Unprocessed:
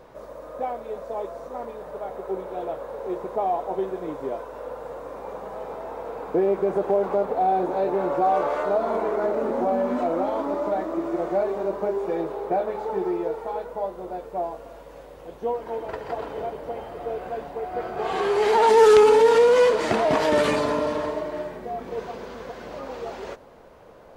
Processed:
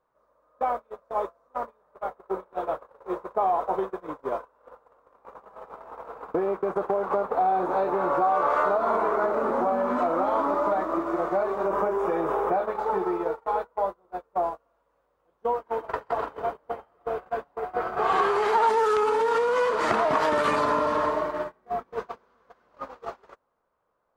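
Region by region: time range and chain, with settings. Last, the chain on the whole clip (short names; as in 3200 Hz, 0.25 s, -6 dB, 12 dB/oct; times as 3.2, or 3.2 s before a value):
11.65–12.53 bell 4200 Hz -11.5 dB 0.25 oct + fast leveller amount 50%
whole clip: compressor 6:1, threshold -24 dBFS; bell 1200 Hz +12.5 dB 0.94 oct; gate -27 dBFS, range -31 dB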